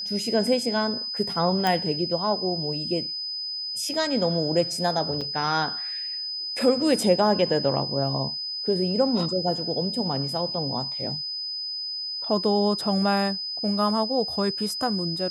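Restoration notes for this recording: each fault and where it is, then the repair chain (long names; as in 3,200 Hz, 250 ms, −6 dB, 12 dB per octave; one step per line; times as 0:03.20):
whistle 5,000 Hz −29 dBFS
0:01.67: click −10 dBFS
0:05.21: drop-out 5 ms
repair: click removal
notch filter 5,000 Hz, Q 30
repair the gap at 0:05.21, 5 ms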